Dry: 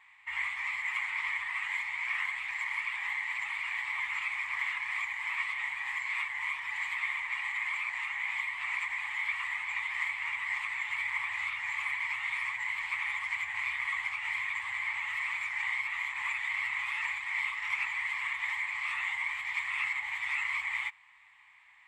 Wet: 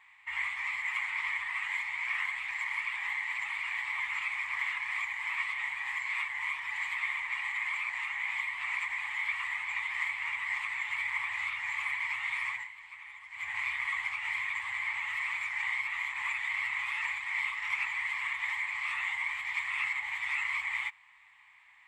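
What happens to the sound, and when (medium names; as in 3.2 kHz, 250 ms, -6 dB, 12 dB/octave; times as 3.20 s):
12.54–13.48 s: dip -14 dB, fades 0.15 s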